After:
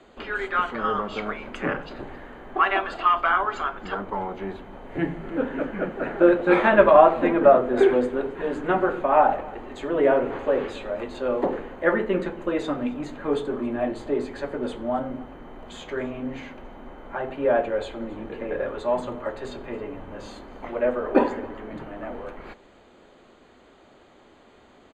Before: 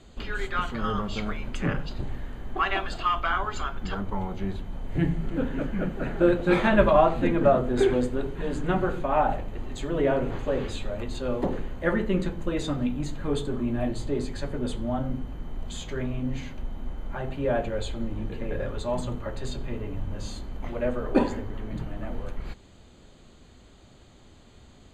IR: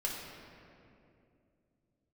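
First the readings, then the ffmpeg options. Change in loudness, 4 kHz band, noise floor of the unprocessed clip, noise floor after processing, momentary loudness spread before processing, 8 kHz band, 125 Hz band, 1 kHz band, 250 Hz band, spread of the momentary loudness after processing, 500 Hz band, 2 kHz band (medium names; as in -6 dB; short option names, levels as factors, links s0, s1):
+4.5 dB, -1.5 dB, -52 dBFS, -54 dBFS, 14 LU, no reading, -8.5 dB, +6.0 dB, +1.0 dB, 20 LU, +5.5 dB, +5.0 dB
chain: -filter_complex "[0:a]acrossover=split=270 2600:gain=0.112 1 0.2[s0][s1][s2];[s0][s1][s2]amix=inputs=3:normalize=0,aecho=1:1:271:0.0841,volume=2"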